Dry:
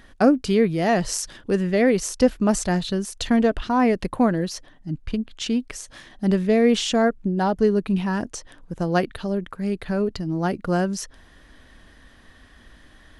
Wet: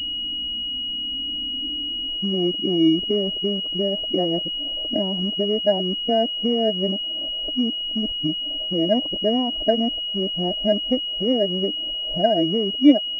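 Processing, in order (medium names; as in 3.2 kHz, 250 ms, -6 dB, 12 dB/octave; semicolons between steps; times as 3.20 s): reverse the whole clip; harmonic-percussive split percussive -7 dB; compression 3:1, threshold -36 dBFS, peak gain reduction 17.5 dB; low-pass sweep 210 Hz -> 580 Hz, 0.81–4.22 s; companded quantiser 6-bit; small resonant body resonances 300/630 Hz, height 17 dB, ringing for 60 ms; class-D stage that switches slowly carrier 2.9 kHz; trim +3 dB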